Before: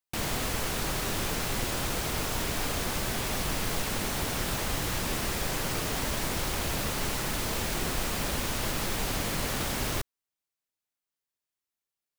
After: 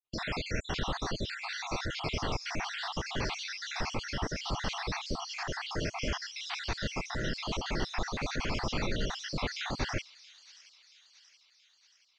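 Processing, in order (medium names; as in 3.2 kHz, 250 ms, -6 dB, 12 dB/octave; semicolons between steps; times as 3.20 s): random holes in the spectrogram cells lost 64%; elliptic low-pass 5.6 kHz, stop band 70 dB; on a send: feedback echo behind a high-pass 677 ms, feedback 56%, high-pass 3.9 kHz, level -12 dB; on the sum: trim +2 dB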